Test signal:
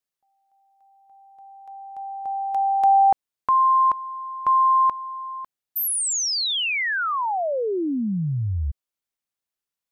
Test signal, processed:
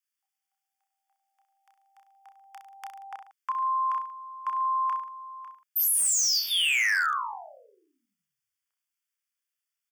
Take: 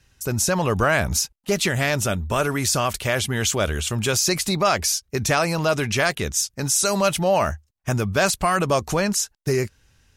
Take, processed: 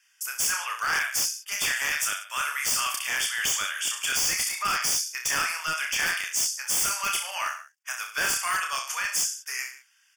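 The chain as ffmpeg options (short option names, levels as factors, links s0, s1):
-af "highpass=f=1300:w=0.5412,highpass=f=1300:w=1.3066,aecho=1:1:30|63|99.3|139.2|183.2:0.631|0.398|0.251|0.158|0.1,aeval=exprs='0.119*(abs(mod(val(0)/0.119+3,4)-2)-1)':c=same,tremolo=f=71:d=0.182,asuperstop=centerf=4000:order=12:qfactor=4.6"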